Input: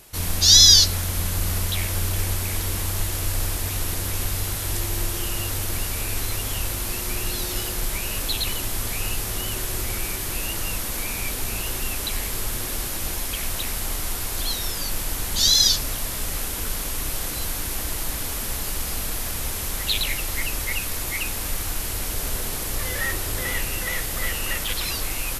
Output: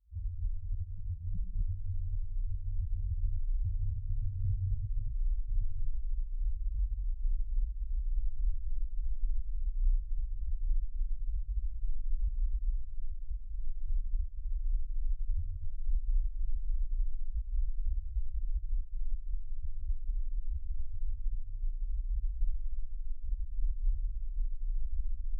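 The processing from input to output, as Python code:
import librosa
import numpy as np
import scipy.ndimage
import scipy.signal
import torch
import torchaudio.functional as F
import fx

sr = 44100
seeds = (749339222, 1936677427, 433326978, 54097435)

y = scipy.signal.sosfilt(scipy.signal.cheby2(4, 40, 720.0, 'lowpass', fs=sr, output='sos'), x)
y = fx.low_shelf(y, sr, hz=130.0, db=12.0)
y = fx.over_compress(y, sr, threshold_db=-18.0, ratio=-1.0)
y = fx.tube_stage(y, sr, drive_db=27.0, bias=0.35)
y = fx.room_flutter(y, sr, wall_m=10.9, rt60_s=0.89)
y = fx.tremolo_shape(y, sr, shape='saw_up', hz=3.5, depth_pct=100)
y = fx.spec_topn(y, sr, count=1)
y = fx.rev_gated(y, sr, seeds[0], gate_ms=270, shape='rising', drr_db=1.0)
y = F.gain(torch.from_numpy(y), 4.0).numpy()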